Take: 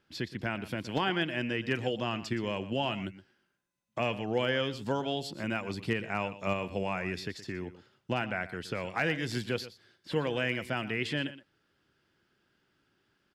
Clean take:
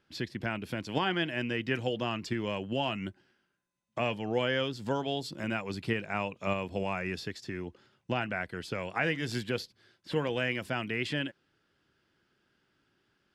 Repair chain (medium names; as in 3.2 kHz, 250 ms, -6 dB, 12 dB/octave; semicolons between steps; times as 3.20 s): clip repair -18 dBFS; inverse comb 120 ms -15 dB